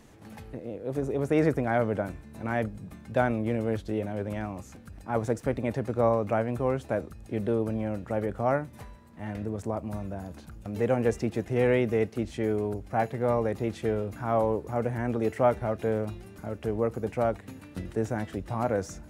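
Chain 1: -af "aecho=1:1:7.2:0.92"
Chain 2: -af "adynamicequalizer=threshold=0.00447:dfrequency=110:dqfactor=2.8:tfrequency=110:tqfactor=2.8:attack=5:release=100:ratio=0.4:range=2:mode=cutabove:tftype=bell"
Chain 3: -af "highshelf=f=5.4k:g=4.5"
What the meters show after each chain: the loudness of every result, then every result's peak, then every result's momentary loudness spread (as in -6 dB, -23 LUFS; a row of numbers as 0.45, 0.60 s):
-27.0, -29.5, -29.5 LUFS; -7.0, -10.5, -10.0 dBFS; 15, 14, 14 LU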